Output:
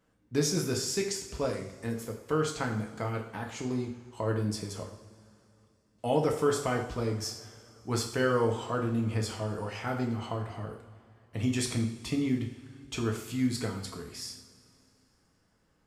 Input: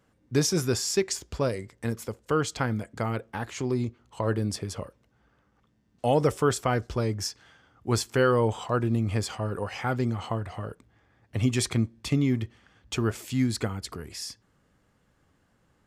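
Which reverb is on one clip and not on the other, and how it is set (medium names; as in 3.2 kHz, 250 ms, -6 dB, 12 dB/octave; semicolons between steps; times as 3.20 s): two-slope reverb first 0.57 s, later 2.9 s, from -18 dB, DRR 1 dB; trim -6 dB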